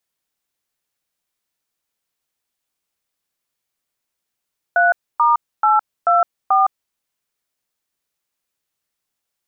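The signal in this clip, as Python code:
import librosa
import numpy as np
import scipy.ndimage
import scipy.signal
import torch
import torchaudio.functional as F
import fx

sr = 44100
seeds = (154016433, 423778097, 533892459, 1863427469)

y = fx.dtmf(sr, digits='3*824', tone_ms=162, gap_ms=274, level_db=-13.5)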